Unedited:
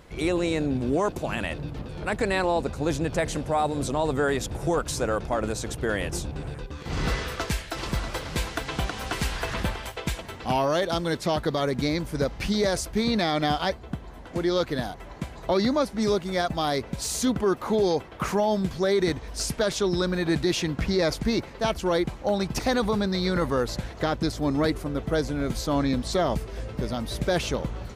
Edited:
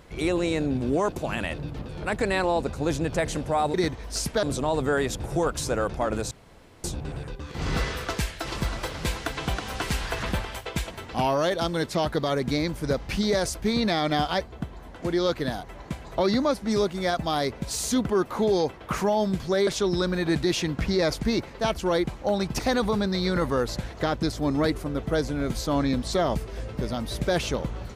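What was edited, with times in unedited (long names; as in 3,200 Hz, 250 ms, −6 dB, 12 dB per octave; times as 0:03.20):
0:05.62–0:06.15: fill with room tone
0:18.98–0:19.67: move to 0:03.74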